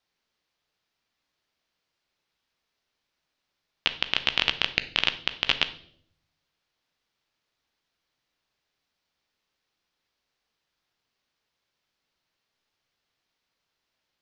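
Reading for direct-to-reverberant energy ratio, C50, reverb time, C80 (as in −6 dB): 10.0 dB, 14.0 dB, 0.65 s, 18.0 dB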